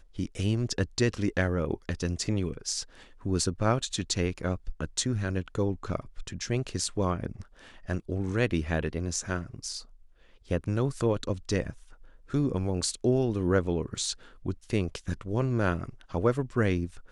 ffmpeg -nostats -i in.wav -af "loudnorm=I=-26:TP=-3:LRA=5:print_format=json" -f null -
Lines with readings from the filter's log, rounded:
"input_i" : "-30.2",
"input_tp" : "-10.5",
"input_lra" : "2.5",
"input_thresh" : "-40.5",